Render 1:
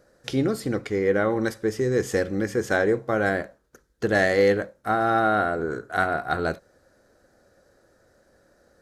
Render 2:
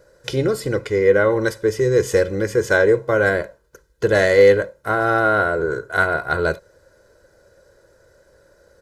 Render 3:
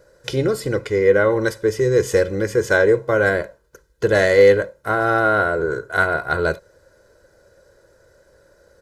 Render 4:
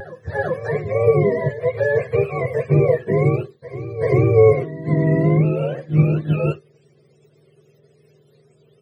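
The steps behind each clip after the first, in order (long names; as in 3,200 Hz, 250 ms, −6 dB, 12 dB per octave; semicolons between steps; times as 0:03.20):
comb filter 2 ms, depth 66%; level +4 dB
no processing that can be heard
frequency axis turned over on the octave scale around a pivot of 470 Hz; backwards echo 387 ms −14 dB; pitch vibrato 0.39 Hz 13 cents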